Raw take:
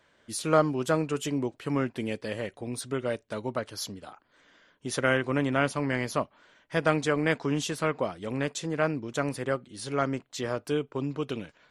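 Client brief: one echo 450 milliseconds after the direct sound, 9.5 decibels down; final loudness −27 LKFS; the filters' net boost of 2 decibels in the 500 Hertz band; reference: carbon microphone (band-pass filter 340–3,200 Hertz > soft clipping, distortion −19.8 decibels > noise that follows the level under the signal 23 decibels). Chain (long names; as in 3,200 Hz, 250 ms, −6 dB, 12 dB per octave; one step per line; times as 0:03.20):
band-pass filter 340–3,200 Hz
parametric band 500 Hz +3.5 dB
single-tap delay 450 ms −9.5 dB
soft clipping −13 dBFS
noise that follows the level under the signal 23 dB
level +3 dB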